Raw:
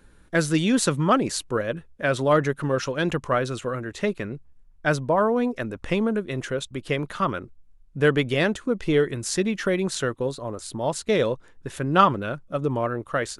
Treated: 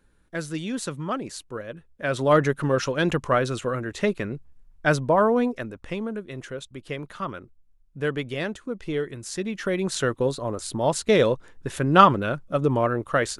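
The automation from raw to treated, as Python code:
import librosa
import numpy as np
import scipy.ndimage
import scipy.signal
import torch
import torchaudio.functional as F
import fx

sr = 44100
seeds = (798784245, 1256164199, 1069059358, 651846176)

y = fx.gain(x, sr, db=fx.line((1.73, -9.0), (2.35, 1.5), (5.39, 1.5), (5.82, -7.0), (9.31, -7.0), (10.17, 3.0)))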